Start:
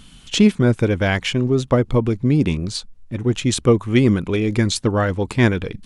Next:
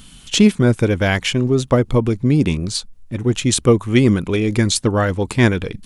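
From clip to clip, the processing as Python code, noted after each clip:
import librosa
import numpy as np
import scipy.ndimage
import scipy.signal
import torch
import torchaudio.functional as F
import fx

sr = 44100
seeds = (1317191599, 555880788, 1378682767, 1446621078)

y = fx.high_shelf(x, sr, hz=8200.0, db=10.0)
y = y * 10.0 ** (1.5 / 20.0)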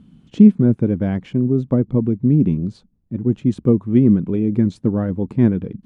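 y = fx.bandpass_q(x, sr, hz=200.0, q=1.5)
y = y * 10.0 ** (3.5 / 20.0)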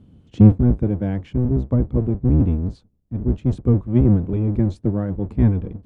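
y = fx.octave_divider(x, sr, octaves=1, level_db=2.0)
y = y * 10.0 ** (-5.0 / 20.0)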